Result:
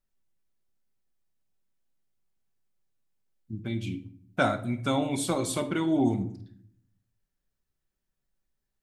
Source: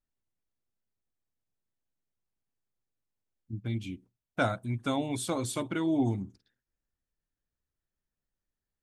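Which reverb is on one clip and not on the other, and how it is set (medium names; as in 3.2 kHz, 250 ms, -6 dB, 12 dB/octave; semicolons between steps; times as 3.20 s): simulated room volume 890 m³, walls furnished, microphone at 1.1 m; trim +3 dB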